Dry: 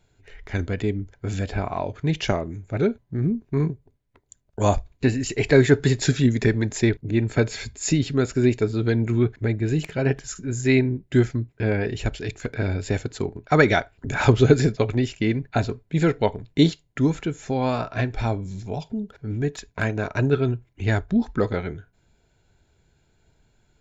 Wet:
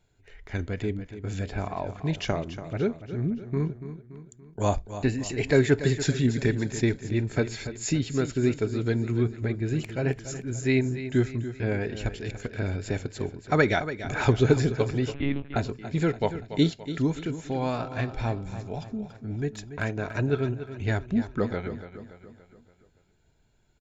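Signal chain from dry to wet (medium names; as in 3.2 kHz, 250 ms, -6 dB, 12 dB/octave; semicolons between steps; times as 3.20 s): on a send: feedback delay 286 ms, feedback 49%, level -12 dB; 15.14–15.56 s: on the sum: monotone LPC vocoder at 8 kHz 140 Hz; trim -5 dB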